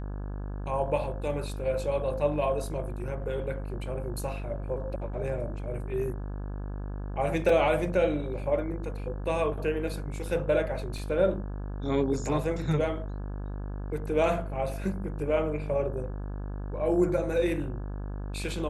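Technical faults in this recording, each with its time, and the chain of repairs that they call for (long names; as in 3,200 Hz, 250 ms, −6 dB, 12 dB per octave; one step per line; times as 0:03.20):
mains buzz 50 Hz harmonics 34 −35 dBFS
0:07.49: drop-out 3.5 ms
0:10.98: drop-out 2.9 ms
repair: hum removal 50 Hz, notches 34
repair the gap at 0:07.49, 3.5 ms
repair the gap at 0:10.98, 2.9 ms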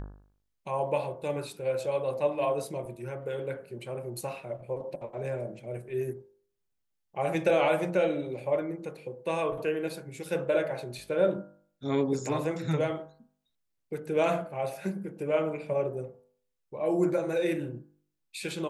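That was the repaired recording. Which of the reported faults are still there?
none of them is left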